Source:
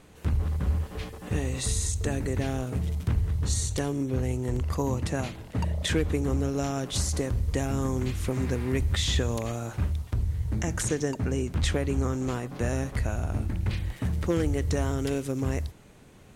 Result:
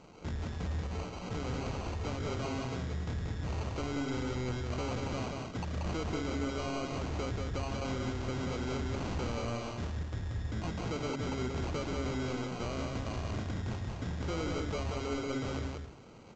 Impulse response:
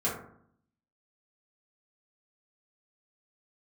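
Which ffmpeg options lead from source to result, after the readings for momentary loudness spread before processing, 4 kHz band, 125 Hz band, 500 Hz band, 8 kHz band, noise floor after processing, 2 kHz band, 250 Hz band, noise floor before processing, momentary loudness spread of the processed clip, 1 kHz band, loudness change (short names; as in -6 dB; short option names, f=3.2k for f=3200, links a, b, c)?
4 LU, -7.5 dB, -9.0 dB, -6.0 dB, -14.5 dB, -44 dBFS, -5.0 dB, -6.5 dB, -51 dBFS, 3 LU, -1.5 dB, -7.5 dB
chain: -filter_complex "[0:a]acrossover=split=3900[a][b];[b]acompressor=threshold=-39dB:ratio=4:attack=1:release=60[c];[a][c]amix=inputs=2:normalize=0,lowshelf=f=90:g=-11.5,bandreject=f=68.07:t=h:w=4,bandreject=f=136.14:t=h:w=4,bandreject=f=204.21:t=h:w=4,bandreject=f=272.28:t=h:w=4,bandreject=f=340.35:t=h:w=4,bandreject=f=408.42:t=h:w=4,acrusher=samples=25:mix=1:aa=0.000001,asoftclip=type=tanh:threshold=-33.5dB,acrusher=bits=4:mode=log:mix=0:aa=0.000001,asplit=2[d][e];[e]aecho=0:1:183:0.668[f];[d][f]amix=inputs=2:normalize=0" -ar 16000 -c:a pcm_alaw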